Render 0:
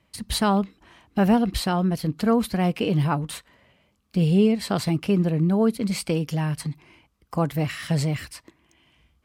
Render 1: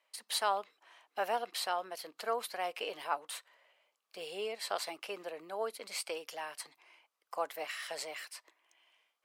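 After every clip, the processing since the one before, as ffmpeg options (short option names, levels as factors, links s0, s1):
-af "highpass=f=540:w=0.5412,highpass=f=540:w=1.3066,volume=0.447"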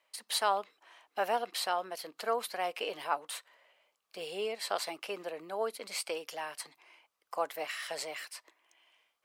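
-af "lowshelf=f=210:g=6,volume=1.26"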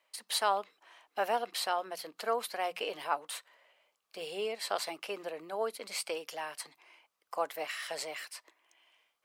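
-af "bandreject=f=60:t=h:w=6,bandreject=f=120:t=h:w=6,bandreject=f=180:t=h:w=6"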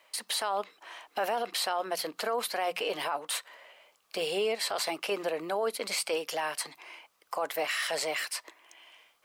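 -filter_complex "[0:a]asplit=2[s0][s1];[s1]acompressor=threshold=0.00631:ratio=6,volume=1.12[s2];[s0][s2]amix=inputs=2:normalize=0,alimiter=level_in=1.41:limit=0.0631:level=0:latency=1:release=10,volume=0.708,volume=1.88"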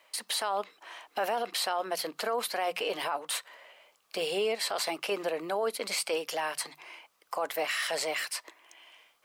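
-af "bandreject=f=50:t=h:w=6,bandreject=f=100:t=h:w=6,bandreject=f=150:t=h:w=6"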